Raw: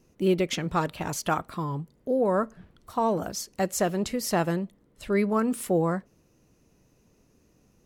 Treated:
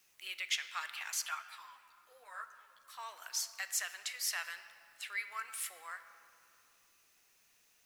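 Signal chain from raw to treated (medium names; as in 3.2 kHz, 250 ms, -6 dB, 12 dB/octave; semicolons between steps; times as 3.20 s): in parallel at -0.5 dB: compression 6:1, threshold -33 dBFS, peak gain reduction 14 dB; on the sum: ladder high-pass 1.5 kHz, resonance 30%; word length cut 12-bit, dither triangular; reverberation RT60 2.9 s, pre-delay 3 ms, DRR 10 dB; 1.26–2.99 s: three-phase chorus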